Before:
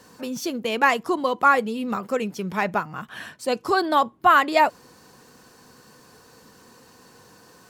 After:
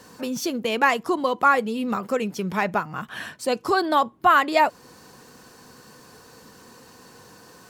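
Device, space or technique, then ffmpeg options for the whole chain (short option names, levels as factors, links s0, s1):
parallel compression: -filter_complex "[0:a]asplit=2[s0][s1];[s1]acompressor=threshold=0.0398:ratio=6,volume=0.75[s2];[s0][s2]amix=inputs=2:normalize=0,volume=0.794"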